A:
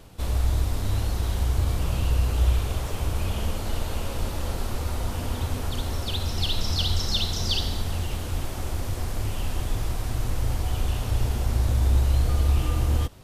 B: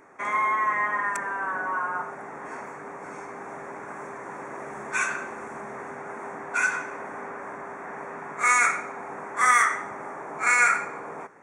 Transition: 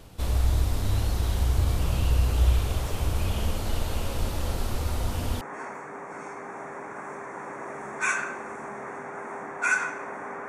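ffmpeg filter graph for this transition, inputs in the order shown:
-filter_complex "[0:a]apad=whole_dur=10.48,atrim=end=10.48,atrim=end=5.412[s0];[1:a]atrim=start=2.328:end=7.4[s1];[s0][s1]acrossfade=d=0.004:c1=hsin:c2=hsin"

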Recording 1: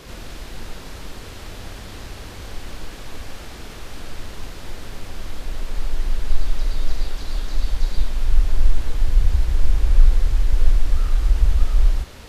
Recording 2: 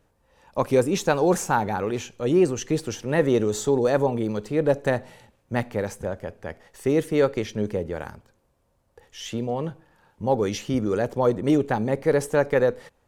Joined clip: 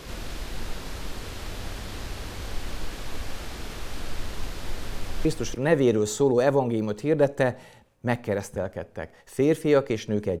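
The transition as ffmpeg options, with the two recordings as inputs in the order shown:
-filter_complex "[0:a]apad=whole_dur=10.4,atrim=end=10.4,atrim=end=5.252[s0];[1:a]atrim=start=2.718:end=7.87[s1];[s0][s1]acrossfade=d=0.004:c1=hsin:c2=hsin,asplit=2[s2][s3];[s3]afade=t=in:st=4.92:d=0.01,afade=t=out:st=5.25:d=0.01,aecho=0:1:290|580|870:0.501187|0.0751781|0.0112767[s4];[s2][s4]amix=inputs=2:normalize=0"

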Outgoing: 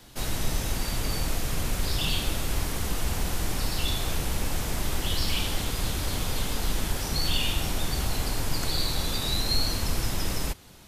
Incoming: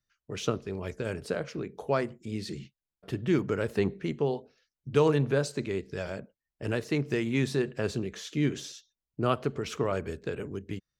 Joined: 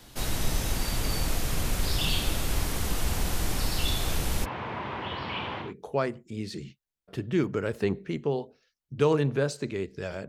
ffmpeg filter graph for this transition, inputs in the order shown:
-filter_complex "[0:a]asplit=3[s0][s1][s2];[s0]afade=t=out:st=4.44:d=0.02[s3];[s1]highpass=f=110:w=0.5412,highpass=f=110:w=1.3066,equalizer=f=160:t=q:w=4:g=-8,equalizer=f=280:t=q:w=4:g=-5,equalizer=f=990:t=q:w=4:g=9,lowpass=f=2700:w=0.5412,lowpass=f=2700:w=1.3066,afade=t=in:st=4.44:d=0.02,afade=t=out:st=5.74:d=0.02[s4];[s2]afade=t=in:st=5.74:d=0.02[s5];[s3][s4][s5]amix=inputs=3:normalize=0,apad=whole_dur=10.28,atrim=end=10.28,atrim=end=5.74,asetpts=PTS-STARTPTS[s6];[1:a]atrim=start=1.51:end=6.23,asetpts=PTS-STARTPTS[s7];[s6][s7]acrossfade=d=0.18:c1=tri:c2=tri"

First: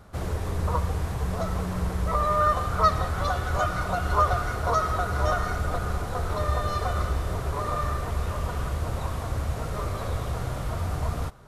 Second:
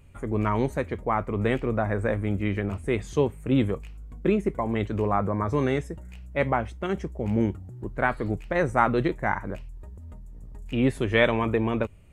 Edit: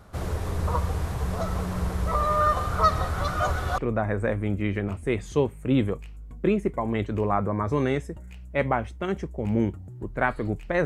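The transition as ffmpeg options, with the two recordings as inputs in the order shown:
-filter_complex "[0:a]apad=whole_dur=10.85,atrim=end=10.85,asplit=2[s0][s1];[s0]atrim=end=3.282[s2];[s1]atrim=start=3.278:end=3.782,asetpts=PTS-STARTPTS,areverse[s3];[1:a]atrim=start=1.588:end=8.66[s4];[s2][s3]acrossfade=d=0.004:c1=hsin:c2=hsin[s5];[s5][s4]acrossfade=d=0.004:c1=hsin:c2=hsin"

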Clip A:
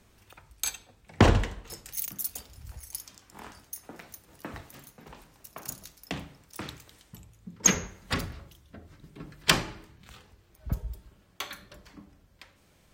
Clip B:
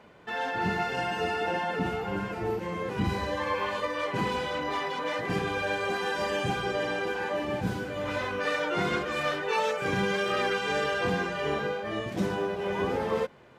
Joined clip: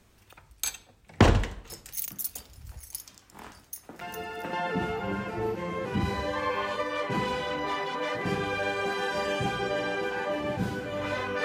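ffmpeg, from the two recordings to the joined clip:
-filter_complex "[1:a]asplit=2[s0][s1];[0:a]apad=whole_dur=11.44,atrim=end=11.44,atrim=end=4.532[s2];[s1]atrim=start=1.568:end=8.48[s3];[s0]atrim=start=1.05:end=1.57,asetpts=PTS-STARTPTS,volume=0.398,afade=t=in:d=0.004:c=hsin,afade=t=out:st=0.516:d=0.004:c=hsin,adelay=176841S[s4];[s2][s3]acrossfade=d=0.004:c1=hsin:c2=hsin[s5];[s5][s4]amix=inputs=2:normalize=0"

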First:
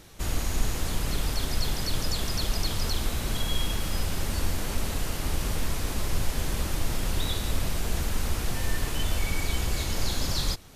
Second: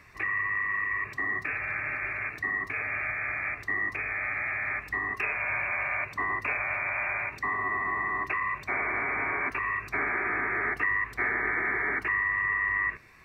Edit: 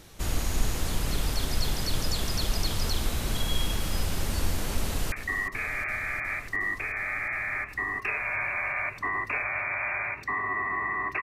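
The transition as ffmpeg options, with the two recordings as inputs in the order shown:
-filter_complex "[0:a]apad=whole_dur=11.22,atrim=end=11.22,atrim=end=5.122[s0];[1:a]atrim=start=2.268:end=8.37[s1];[s0][s1]acrossfade=d=0.004:c1=hsin:c2=hsin,asplit=2[s2][s3];[s3]afade=t=in:st=4.8:d=0.01,afade=t=out:st=5.12:d=0.01,aecho=0:1:360|720|1080|1440|1800|2160|2520|2880|3240|3600|3960|4320:0.266073|0.212858|0.170286|0.136229|0.108983|0.0871866|0.0697493|0.0557994|0.0446396|0.0357116|0.0285693|0.0228555[s4];[s2][s4]amix=inputs=2:normalize=0"

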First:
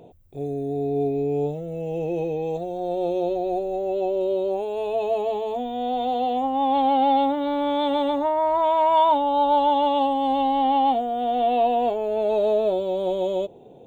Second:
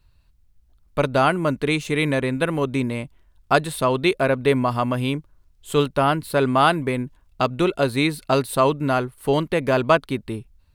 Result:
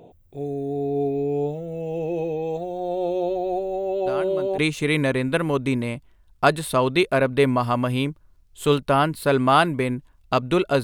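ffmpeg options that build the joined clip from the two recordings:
-filter_complex "[1:a]asplit=2[s0][s1];[0:a]apad=whole_dur=10.83,atrim=end=10.83,atrim=end=4.582[s2];[s1]atrim=start=1.658:end=7.91[s3];[s0]atrim=start=1.13:end=1.66,asetpts=PTS-STARTPTS,volume=0.2,afade=t=in:d=0.004:c=hsin,afade=t=out:st=0.526:d=0.004:c=hsin,adelay=178605S[s4];[s2][s3]acrossfade=d=0.004:c1=hsin:c2=hsin[s5];[s5][s4]amix=inputs=2:normalize=0"

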